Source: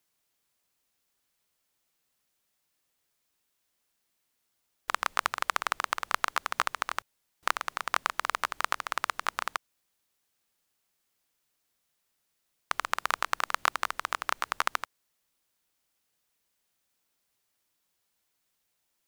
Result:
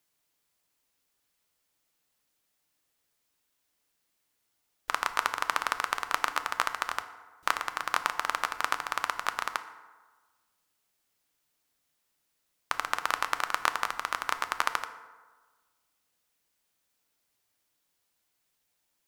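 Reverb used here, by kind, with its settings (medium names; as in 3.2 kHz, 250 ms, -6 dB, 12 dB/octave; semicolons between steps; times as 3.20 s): FDN reverb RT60 1.4 s, low-frequency decay 0.85×, high-frequency decay 0.5×, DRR 9 dB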